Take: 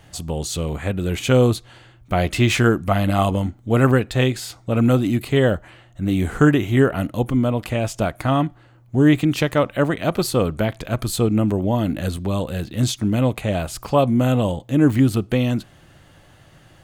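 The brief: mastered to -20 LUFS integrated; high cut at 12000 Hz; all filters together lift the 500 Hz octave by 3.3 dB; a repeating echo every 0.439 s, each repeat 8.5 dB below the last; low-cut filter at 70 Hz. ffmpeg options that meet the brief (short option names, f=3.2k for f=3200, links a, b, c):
-af "highpass=70,lowpass=12k,equalizer=f=500:t=o:g=4,aecho=1:1:439|878|1317|1756:0.376|0.143|0.0543|0.0206,volume=-1.5dB"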